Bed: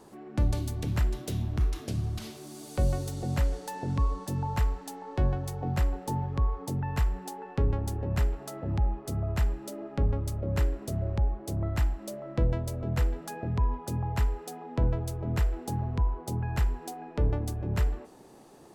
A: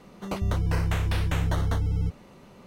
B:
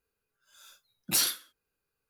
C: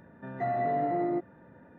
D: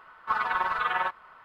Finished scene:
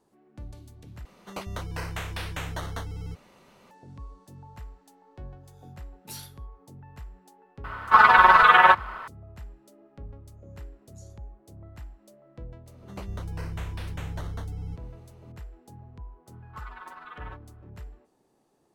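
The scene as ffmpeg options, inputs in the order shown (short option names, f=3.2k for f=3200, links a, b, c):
-filter_complex "[1:a]asplit=2[a][b];[2:a]asplit=2[c][d];[4:a]asplit=2[e][f];[0:a]volume=-16dB[g];[a]lowshelf=f=430:g=-10[h];[e]alimiter=level_in=16.5dB:limit=-1dB:release=50:level=0:latency=1[i];[d]bandpass=f=6.7k:t=q:w=14:csg=0[j];[g]asplit=2[k][l];[k]atrim=end=1.054[m];[h]atrim=end=2.66,asetpts=PTS-STARTPTS,volume=-1dB[n];[l]atrim=start=3.706[o];[c]atrim=end=2.09,asetpts=PTS-STARTPTS,volume=-16.5dB,afade=t=in:d=0.004:c=hsin,afade=t=out:st=2.086:d=0.004:c=hsin,adelay=4960[p];[i]atrim=end=1.44,asetpts=PTS-STARTPTS,volume=-2.5dB,afade=t=in:d=0.004:c=hsin,afade=t=out:st=1.436:d=0.004:c=hsin,adelay=7640[q];[j]atrim=end=2.09,asetpts=PTS-STARTPTS,volume=-17.5dB,afade=t=in:d=0.004:c=hsin,afade=t=out:st=2.086:d=0.004:c=hsin,adelay=9830[r];[b]atrim=end=2.66,asetpts=PTS-STARTPTS,volume=-9.5dB,afade=t=in:d=0.004:c=hsin,afade=t=out:st=2.656:d=0.004:c=hsin,adelay=12660[s];[f]atrim=end=1.44,asetpts=PTS-STARTPTS,volume=-17dB,afade=t=in:d=0.004:c=hsin,afade=t=out:st=1.436:d=0.004:c=hsin,adelay=16260[t];[m][n]acrossfade=d=0.004:c1=hsin:c2=hsin[u];[u][o]acrossfade=d=0.004:c1=hsin:c2=hsin[v];[v][p][q][r][s][t]amix=inputs=6:normalize=0"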